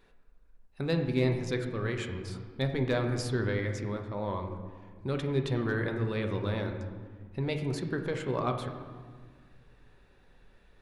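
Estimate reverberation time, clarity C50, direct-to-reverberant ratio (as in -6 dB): 1.7 s, 6.5 dB, 4.0 dB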